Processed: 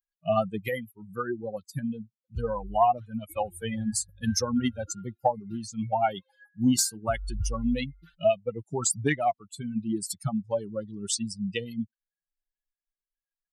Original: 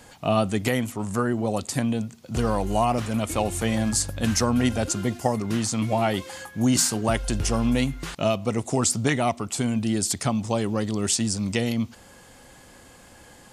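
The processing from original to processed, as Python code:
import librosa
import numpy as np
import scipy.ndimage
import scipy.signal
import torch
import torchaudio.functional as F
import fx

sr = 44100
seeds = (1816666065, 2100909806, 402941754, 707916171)

y = fx.bin_expand(x, sr, power=3.0)
y = fx.cheby_harmonics(y, sr, harmonics=(2, 4), levels_db=(-22, -33), full_scale_db=-12.5)
y = fx.dynamic_eq(y, sr, hz=750.0, q=2.6, threshold_db=-50.0, ratio=4.0, max_db=6)
y = F.gain(torch.from_numpy(y), 1.5).numpy()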